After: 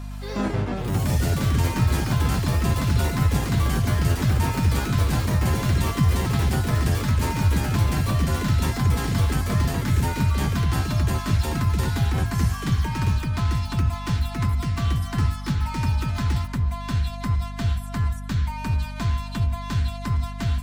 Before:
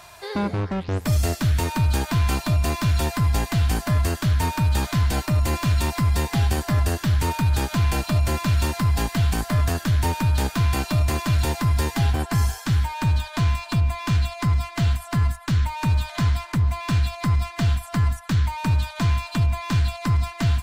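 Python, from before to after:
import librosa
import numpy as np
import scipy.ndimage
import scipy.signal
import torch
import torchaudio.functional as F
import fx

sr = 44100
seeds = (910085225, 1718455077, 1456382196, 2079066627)

y = fx.notch_comb(x, sr, f0_hz=160.0)
y = fx.echo_pitch(y, sr, ms=106, semitones=4, count=3, db_per_echo=-3.0)
y = fx.add_hum(y, sr, base_hz=50, snr_db=11)
y = y * 10.0 ** (-3.0 / 20.0)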